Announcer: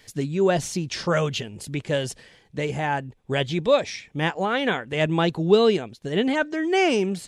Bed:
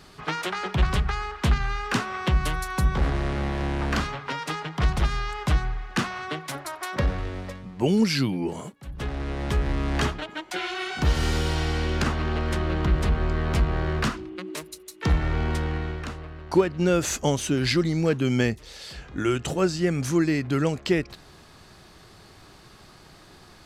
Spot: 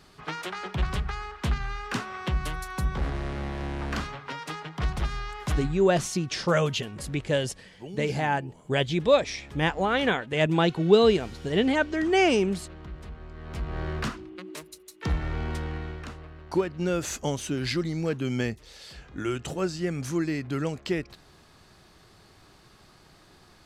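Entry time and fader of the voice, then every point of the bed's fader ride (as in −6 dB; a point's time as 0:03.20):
5.40 s, −1.0 dB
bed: 0:05.67 −5.5 dB
0:06.07 −18.5 dB
0:13.32 −18.5 dB
0:13.81 −5.5 dB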